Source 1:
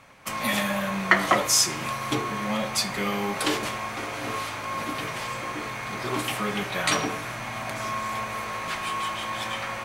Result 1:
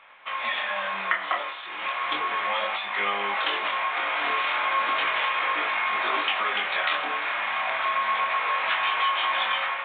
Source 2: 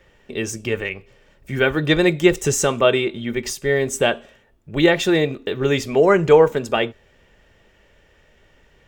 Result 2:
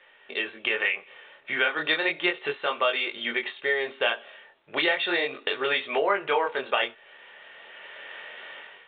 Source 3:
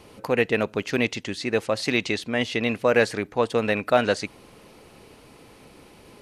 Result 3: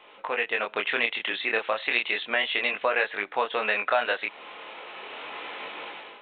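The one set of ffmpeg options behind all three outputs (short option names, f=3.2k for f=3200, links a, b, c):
-af "highpass=830,dynaudnorm=f=450:g=3:m=16dB,flanger=delay=19.5:depth=7.6:speed=0.34,acompressor=threshold=-31dB:ratio=3,volume=6dB" -ar 8000 -c:a pcm_alaw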